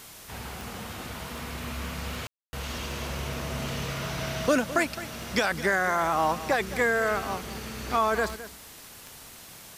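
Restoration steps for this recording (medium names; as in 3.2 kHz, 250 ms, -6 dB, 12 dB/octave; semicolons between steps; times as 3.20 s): de-click; room tone fill 2.27–2.53 s; noise reduction 27 dB, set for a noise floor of -47 dBFS; inverse comb 212 ms -14.5 dB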